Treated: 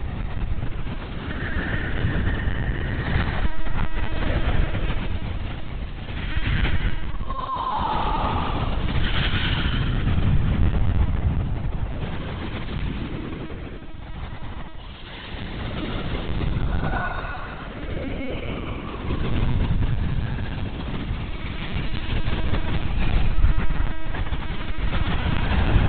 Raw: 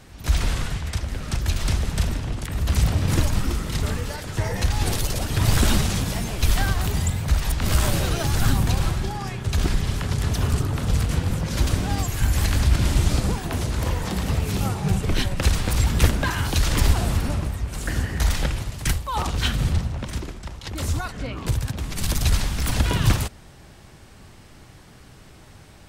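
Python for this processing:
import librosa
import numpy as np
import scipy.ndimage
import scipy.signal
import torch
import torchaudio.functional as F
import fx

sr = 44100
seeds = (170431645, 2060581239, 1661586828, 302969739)

y = fx.env_lowpass_down(x, sr, base_hz=2000.0, full_db=-15.5)
y = fx.paulstretch(y, sr, seeds[0], factor=4.9, window_s=0.25, from_s=17.54)
y = fx.lpc_vocoder(y, sr, seeds[1], excitation='pitch_kept', order=16)
y = y + 10.0 ** (-15.5 / 20.0) * np.pad(y, (int(138 * sr / 1000.0), 0))[:len(y)]
y = y * 10.0 ** (1.5 / 20.0)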